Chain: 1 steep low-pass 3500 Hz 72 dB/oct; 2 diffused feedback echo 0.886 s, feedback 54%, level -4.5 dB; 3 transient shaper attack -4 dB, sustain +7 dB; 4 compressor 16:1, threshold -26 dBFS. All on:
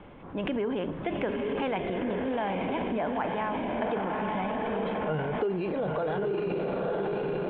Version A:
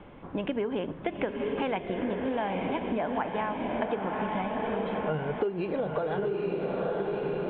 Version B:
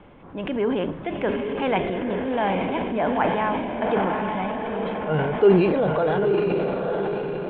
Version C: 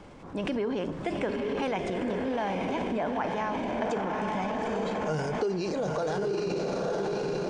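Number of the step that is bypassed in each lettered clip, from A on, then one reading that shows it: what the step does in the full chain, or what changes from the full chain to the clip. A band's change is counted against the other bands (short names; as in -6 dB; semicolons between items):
3, crest factor change +2.5 dB; 4, mean gain reduction 5.5 dB; 1, 4 kHz band +2.5 dB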